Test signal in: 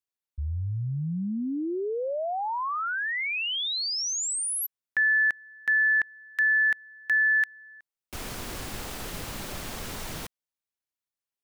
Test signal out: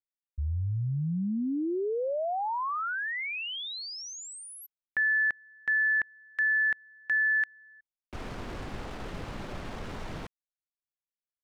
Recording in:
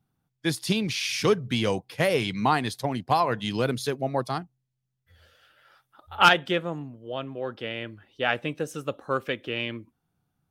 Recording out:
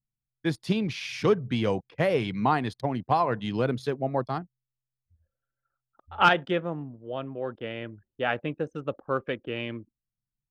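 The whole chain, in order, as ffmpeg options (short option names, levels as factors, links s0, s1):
-af "lowpass=f=1600:p=1,anlmdn=0.0251"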